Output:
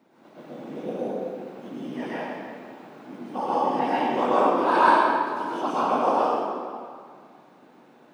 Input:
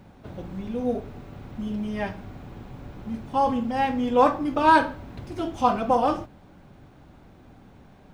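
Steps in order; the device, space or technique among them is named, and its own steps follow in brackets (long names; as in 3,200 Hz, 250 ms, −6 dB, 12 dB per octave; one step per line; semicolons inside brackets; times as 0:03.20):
whispering ghost (random phases in short frames; high-pass filter 220 Hz 24 dB per octave; convolution reverb RT60 2.0 s, pre-delay 103 ms, DRR −9 dB)
level −8.5 dB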